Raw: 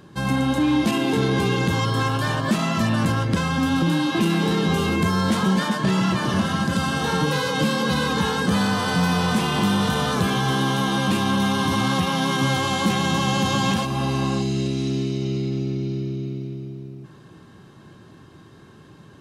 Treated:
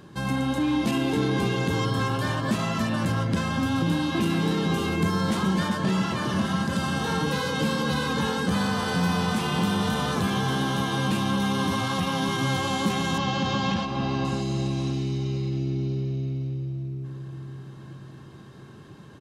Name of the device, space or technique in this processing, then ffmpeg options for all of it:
parallel compression: -filter_complex "[0:a]asettb=1/sr,asplit=3[a][b][c];[a]atrim=end=13.184[d];[b]atrim=start=13.18:end=14.25,asetpts=PTS-STARTPTS,afade=t=in:d=0.004:c=qsin,afade=t=out:st=1.066:d=0.004:c=qsin,lowpass=f=5.6k:w=0.5412,lowpass=f=5.6k:w=1.3066[e];[c]atrim=start=14.246[f];[d][e]acrossfade=d=0.004:c1=hsin:c2=qsin[g];[g][f]acrossfade=d=0.004:c1=qsin:c2=hsin,asplit=2[h][i];[i]adelay=567,lowpass=f=890:p=1,volume=-6.5dB,asplit=2[j][k];[k]adelay=567,lowpass=f=890:p=1,volume=0.43,asplit=2[l][m];[m]adelay=567,lowpass=f=890:p=1,volume=0.43,asplit=2[n][o];[o]adelay=567,lowpass=f=890:p=1,volume=0.43,asplit=2[p][q];[q]adelay=567,lowpass=f=890:p=1,volume=0.43[r];[h][j][l][n][p][r]amix=inputs=6:normalize=0,asplit=2[s][t];[t]acompressor=threshold=-37dB:ratio=6,volume=-2.5dB[u];[s][u]amix=inputs=2:normalize=0,volume=-5.5dB"

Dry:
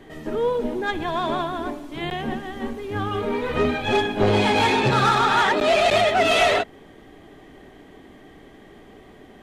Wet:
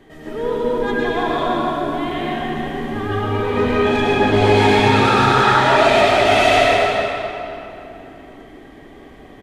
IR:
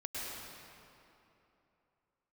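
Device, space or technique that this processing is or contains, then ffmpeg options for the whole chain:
cave: -filter_complex "[0:a]aecho=1:1:285:0.299[a];[1:a]atrim=start_sample=2205[b];[a][b]afir=irnorm=-1:irlink=0,volume=2.5dB"

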